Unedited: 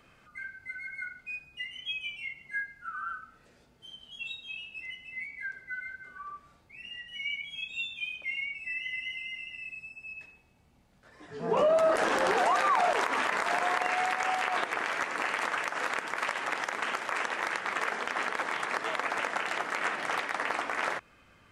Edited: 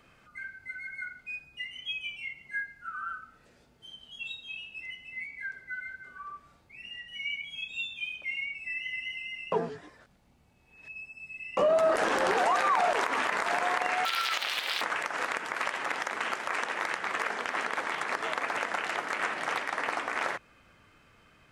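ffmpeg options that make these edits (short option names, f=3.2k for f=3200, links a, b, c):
-filter_complex "[0:a]asplit=5[a][b][c][d][e];[a]atrim=end=9.522[f];[b]atrim=start=9.518:end=11.572,asetpts=PTS-STARTPTS,areverse[g];[c]atrim=start=11.568:end=14.054[h];[d]atrim=start=14.05:end=15.43,asetpts=PTS-STARTPTS,asetrate=79821,aresample=44100,atrim=end_sample=33623,asetpts=PTS-STARTPTS[i];[e]atrim=start=15.426[j];[f][g]acrossfade=d=0.004:c1=hsin:c2=hsin[k];[k][h]acrossfade=d=0.004:c1=hsin:c2=hsin[l];[l][i]acrossfade=d=0.004:c1=hsin:c2=hsin[m];[m][j]acrossfade=d=0.004:c1=hsin:c2=hsin"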